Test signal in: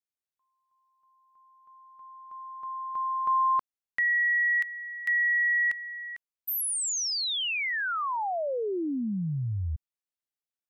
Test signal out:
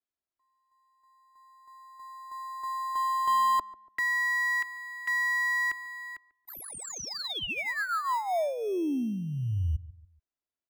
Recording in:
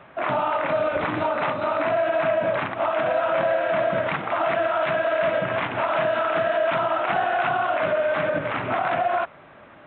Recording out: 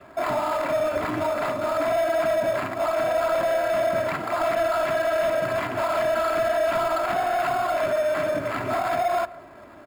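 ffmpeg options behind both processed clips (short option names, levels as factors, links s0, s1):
-filter_complex "[0:a]lowpass=f=1900:p=1,aecho=1:1:3:0.51,adynamicequalizer=threshold=0.0158:dfrequency=890:dqfactor=3.3:tfrequency=890:tqfactor=3.3:attack=5:release=100:ratio=0.375:range=2:mode=cutabove:tftype=bell,acrossover=split=290|450[s0][s1][s2];[s1]acompressor=threshold=0.00562:ratio=6[s3];[s0][s3][s2]amix=inputs=3:normalize=0,asoftclip=type=tanh:threshold=0.112,asplit=2[s4][s5];[s5]acrusher=samples=15:mix=1:aa=0.000001,volume=0.282[s6];[s4][s6]amix=inputs=2:normalize=0,asplit=2[s7][s8];[s8]adelay=143,lowpass=f=1100:p=1,volume=0.133,asplit=2[s9][s10];[s10]adelay=143,lowpass=f=1100:p=1,volume=0.37,asplit=2[s11][s12];[s12]adelay=143,lowpass=f=1100:p=1,volume=0.37[s13];[s7][s9][s11][s13]amix=inputs=4:normalize=0"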